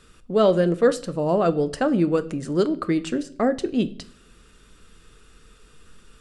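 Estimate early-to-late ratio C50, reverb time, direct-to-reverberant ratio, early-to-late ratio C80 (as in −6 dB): 18.5 dB, 0.55 s, 12.0 dB, 22.5 dB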